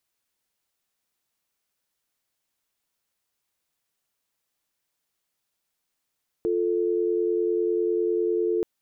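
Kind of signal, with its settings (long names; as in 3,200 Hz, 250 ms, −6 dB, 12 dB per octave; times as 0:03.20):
call progress tone dial tone, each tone −24 dBFS 2.18 s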